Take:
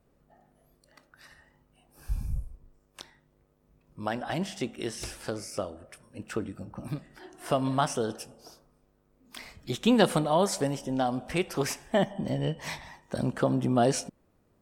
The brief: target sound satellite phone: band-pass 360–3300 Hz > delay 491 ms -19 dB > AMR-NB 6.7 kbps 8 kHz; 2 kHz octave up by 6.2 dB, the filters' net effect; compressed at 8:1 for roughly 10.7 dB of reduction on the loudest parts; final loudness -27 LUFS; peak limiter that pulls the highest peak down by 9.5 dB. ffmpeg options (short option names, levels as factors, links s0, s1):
-af "equalizer=f=2000:t=o:g=8.5,acompressor=threshold=0.0447:ratio=8,alimiter=level_in=1.12:limit=0.0631:level=0:latency=1,volume=0.891,highpass=360,lowpass=3300,aecho=1:1:491:0.112,volume=5.62" -ar 8000 -c:a libopencore_amrnb -b:a 6700